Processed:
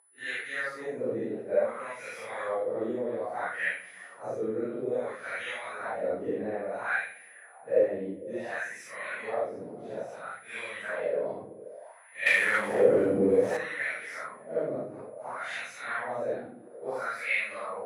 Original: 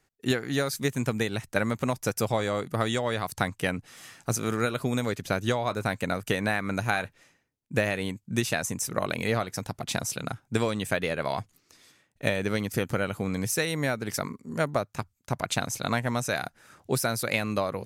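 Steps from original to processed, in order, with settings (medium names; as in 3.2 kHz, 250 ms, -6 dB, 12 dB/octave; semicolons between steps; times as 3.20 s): phase randomisation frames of 200 ms; whistle 10 kHz -32 dBFS; 12.26–13.57 s: waveshaping leveller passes 5; peaking EQ 520 Hz +8 dB 0.7 oct; repeats whose band climbs or falls 150 ms, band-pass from 150 Hz, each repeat 0.7 oct, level -9 dB; on a send at -12.5 dB: reverberation, pre-delay 63 ms; on the sum: wah-wah 0.59 Hz 310–2300 Hz, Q 2.8; peaking EQ 1.9 kHz +7 dB 0.43 oct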